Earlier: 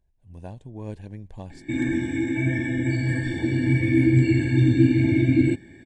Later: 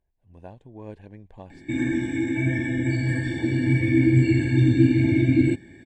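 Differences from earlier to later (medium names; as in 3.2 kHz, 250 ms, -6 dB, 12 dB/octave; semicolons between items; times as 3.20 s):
speech: add tone controls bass -7 dB, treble -13 dB; reverb: off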